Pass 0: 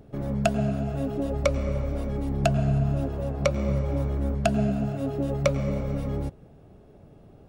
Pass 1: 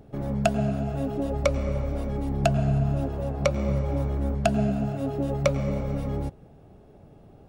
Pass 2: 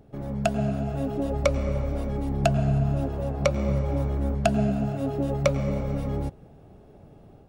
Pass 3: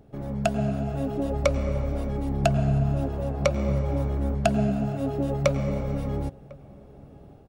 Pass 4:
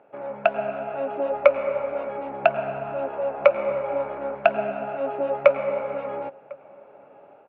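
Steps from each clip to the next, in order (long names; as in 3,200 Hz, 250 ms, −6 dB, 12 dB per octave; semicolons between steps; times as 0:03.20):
parametric band 810 Hz +4 dB 0.27 octaves
automatic gain control gain up to 4.5 dB; level −3.5 dB
slap from a distant wall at 180 metres, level −23 dB
loudspeaker in its box 480–2,600 Hz, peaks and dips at 570 Hz +9 dB, 910 Hz +9 dB, 1,400 Hz +9 dB, 2,500 Hz +10 dB; level +1 dB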